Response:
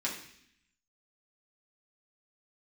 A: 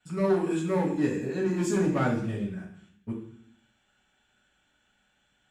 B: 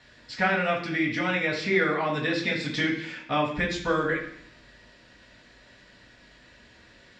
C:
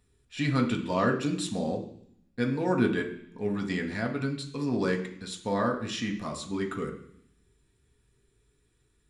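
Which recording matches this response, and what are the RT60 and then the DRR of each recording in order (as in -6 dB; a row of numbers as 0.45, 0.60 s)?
B; 0.65, 0.65, 0.65 s; -12.5, -5.5, 1.0 dB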